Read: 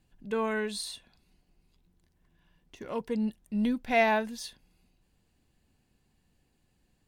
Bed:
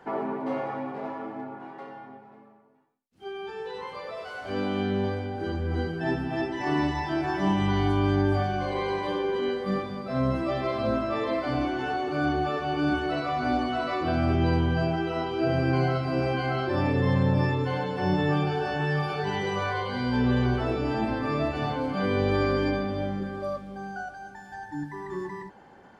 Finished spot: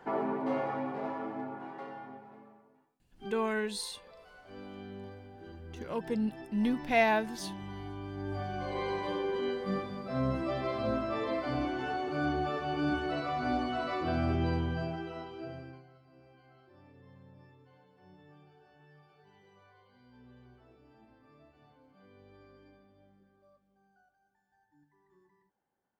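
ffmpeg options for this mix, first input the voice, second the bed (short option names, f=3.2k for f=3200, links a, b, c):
-filter_complex "[0:a]adelay=3000,volume=-1.5dB[a];[1:a]volume=10.5dB,afade=t=out:st=3.07:d=0.46:silence=0.158489,afade=t=in:st=8.14:d=0.7:silence=0.237137,afade=t=out:st=14.18:d=1.65:silence=0.0398107[b];[a][b]amix=inputs=2:normalize=0"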